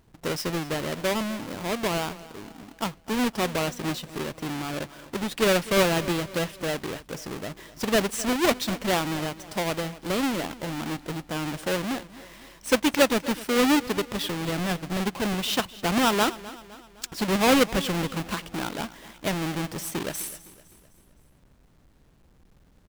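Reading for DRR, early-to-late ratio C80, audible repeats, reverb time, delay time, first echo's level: none, none, 3, none, 0.256 s, -18.0 dB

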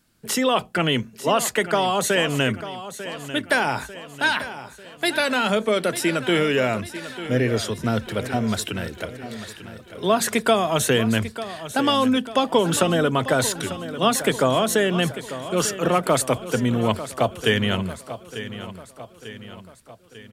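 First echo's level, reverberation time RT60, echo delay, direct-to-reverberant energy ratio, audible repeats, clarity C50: -13.0 dB, none, 0.895 s, none, 4, none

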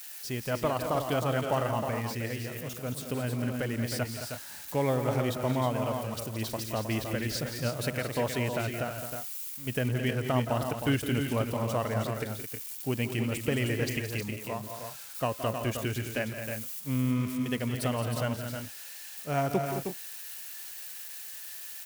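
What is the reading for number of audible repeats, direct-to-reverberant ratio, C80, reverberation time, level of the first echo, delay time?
3, none, none, none, -11.5 dB, 0.17 s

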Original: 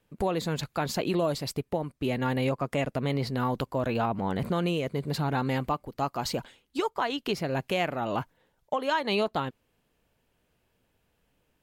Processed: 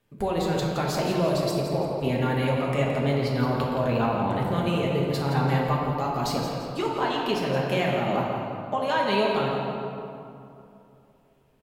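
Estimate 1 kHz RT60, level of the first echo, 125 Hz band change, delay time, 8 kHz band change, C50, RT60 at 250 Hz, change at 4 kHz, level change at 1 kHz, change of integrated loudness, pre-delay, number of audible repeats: 2.6 s, -8.0 dB, +5.5 dB, 0.169 s, +1.5 dB, -0.5 dB, 3.1 s, +2.5 dB, +4.0 dB, +4.0 dB, 5 ms, 1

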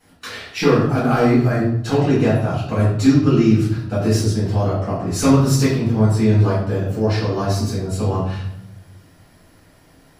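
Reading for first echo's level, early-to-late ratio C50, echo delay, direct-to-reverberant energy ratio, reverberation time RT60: none, 2.0 dB, none, -12.5 dB, 0.75 s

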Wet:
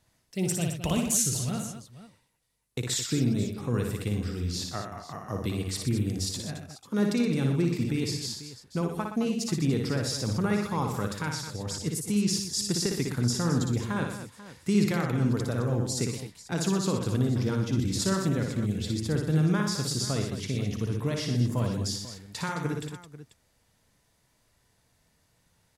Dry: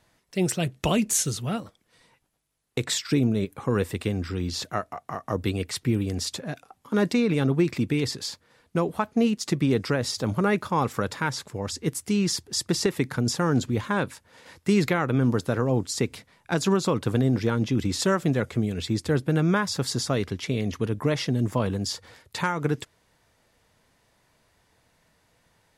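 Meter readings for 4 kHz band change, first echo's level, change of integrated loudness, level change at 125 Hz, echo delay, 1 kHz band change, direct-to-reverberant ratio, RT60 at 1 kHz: -2.5 dB, -4.5 dB, -2.5 dB, -1.0 dB, 58 ms, -6.5 dB, none, none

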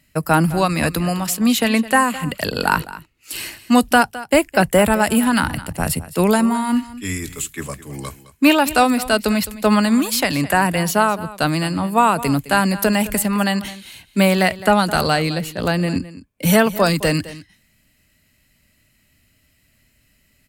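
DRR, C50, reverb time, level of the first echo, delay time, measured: none, none, none, -16.5 dB, 0.212 s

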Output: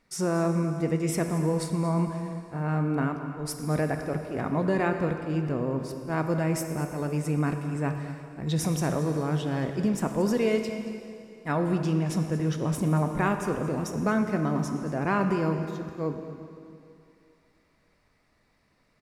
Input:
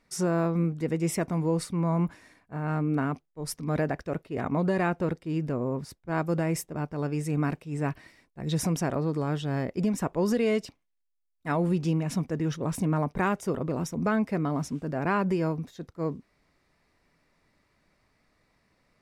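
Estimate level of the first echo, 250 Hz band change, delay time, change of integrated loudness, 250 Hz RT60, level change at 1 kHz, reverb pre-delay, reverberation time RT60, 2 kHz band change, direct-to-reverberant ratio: -15.0 dB, +1.0 dB, 0.227 s, +1.0 dB, 2.6 s, +1.0 dB, 7 ms, 2.7 s, +1.0 dB, 5.5 dB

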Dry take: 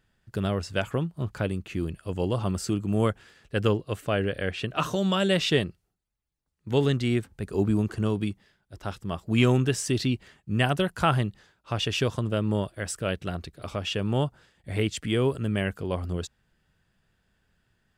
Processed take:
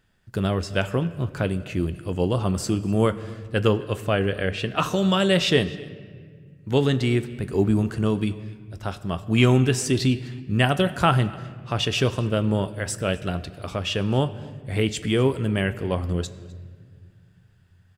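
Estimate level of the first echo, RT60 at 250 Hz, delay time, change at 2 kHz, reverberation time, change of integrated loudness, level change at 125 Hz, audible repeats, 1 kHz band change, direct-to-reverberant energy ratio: -23.0 dB, 3.0 s, 0.255 s, +4.0 dB, 1.7 s, +4.0 dB, +4.0 dB, 1, +4.0 dB, 10.5 dB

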